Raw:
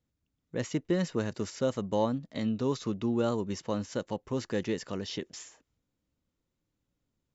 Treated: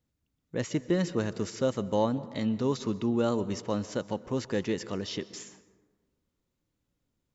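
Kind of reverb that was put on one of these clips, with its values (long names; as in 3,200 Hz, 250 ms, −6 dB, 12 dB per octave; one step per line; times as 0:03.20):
dense smooth reverb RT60 1.4 s, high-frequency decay 0.4×, pre-delay 115 ms, DRR 16.5 dB
level +1.5 dB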